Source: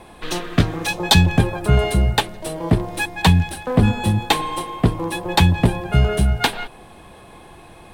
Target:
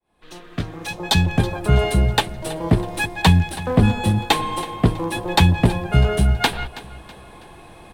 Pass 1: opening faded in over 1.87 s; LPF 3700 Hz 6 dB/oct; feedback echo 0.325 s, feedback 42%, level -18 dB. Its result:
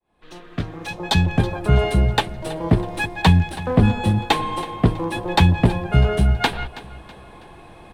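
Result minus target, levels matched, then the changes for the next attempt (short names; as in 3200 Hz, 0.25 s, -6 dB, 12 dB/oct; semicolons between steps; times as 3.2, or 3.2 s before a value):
8000 Hz band -6.0 dB
change: LPF 14000 Hz 6 dB/oct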